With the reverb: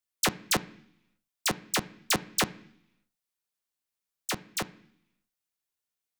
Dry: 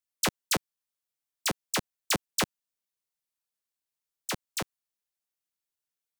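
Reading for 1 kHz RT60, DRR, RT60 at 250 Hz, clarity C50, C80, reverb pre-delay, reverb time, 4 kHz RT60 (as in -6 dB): 0.75 s, 11.0 dB, 0.90 s, 19.5 dB, 21.5 dB, 3 ms, 0.70 s, 1.0 s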